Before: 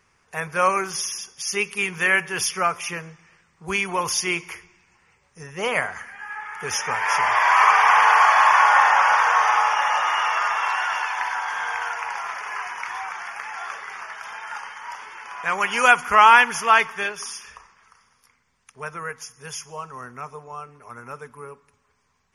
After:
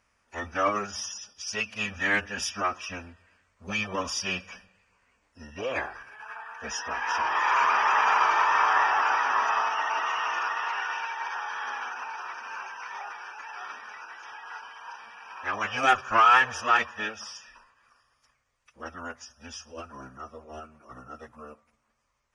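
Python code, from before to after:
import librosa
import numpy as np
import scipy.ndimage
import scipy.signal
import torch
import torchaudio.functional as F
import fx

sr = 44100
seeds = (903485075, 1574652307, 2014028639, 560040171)

y = fx.cheby_harmonics(x, sr, harmonics=(6,), levels_db=(-35,), full_scale_db=-1.0)
y = fx.pitch_keep_formants(y, sr, semitones=-11.0)
y = y * librosa.db_to_amplitude(-5.5)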